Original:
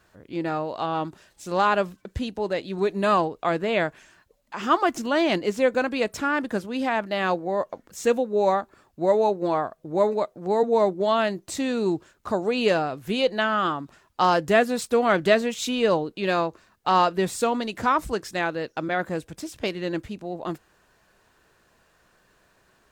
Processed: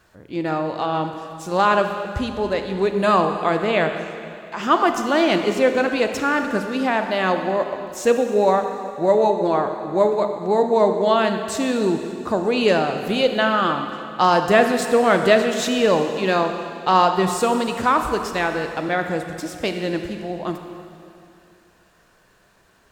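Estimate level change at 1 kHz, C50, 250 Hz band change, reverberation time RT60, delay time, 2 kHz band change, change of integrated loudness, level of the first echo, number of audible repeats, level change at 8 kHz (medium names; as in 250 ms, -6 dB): +4.5 dB, 6.5 dB, +4.5 dB, 2.6 s, no echo, +4.5 dB, +4.5 dB, no echo, no echo, +4.5 dB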